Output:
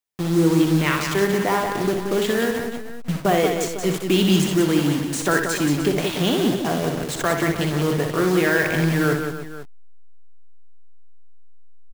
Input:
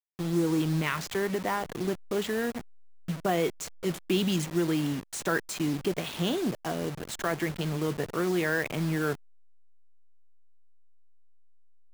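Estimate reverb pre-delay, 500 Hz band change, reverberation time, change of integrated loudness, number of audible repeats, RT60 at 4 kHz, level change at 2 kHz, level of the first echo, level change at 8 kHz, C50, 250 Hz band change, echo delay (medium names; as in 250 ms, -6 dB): no reverb, +9.5 dB, no reverb, +9.0 dB, 4, no reverb, +9.5 dB, -6.5 dB, +9.5 dB, no reverb, +9.5 dB, 61 ms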